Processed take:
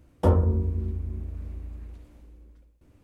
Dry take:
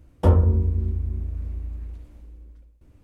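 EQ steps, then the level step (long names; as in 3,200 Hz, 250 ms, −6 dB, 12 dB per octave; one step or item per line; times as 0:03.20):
low-shelf EQ 87 Hz −9 dB
dynamic equaliser 2,600 Hz, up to −4 dB, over −48 dBFS, Q 0.94
0.0 dB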